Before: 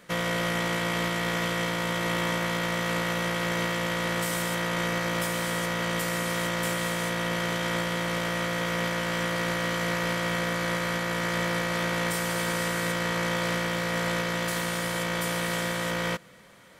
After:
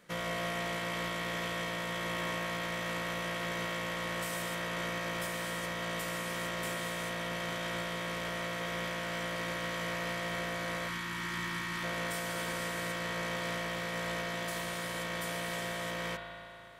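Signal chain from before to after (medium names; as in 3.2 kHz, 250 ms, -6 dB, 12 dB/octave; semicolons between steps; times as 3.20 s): spring tank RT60 2.8 s, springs 36 ms, chirp 30 ms, DRR 1.5 dB; time-frequency box 10.88–11.84 s, 400–840 Hz -15 dB; trim -8.5 dB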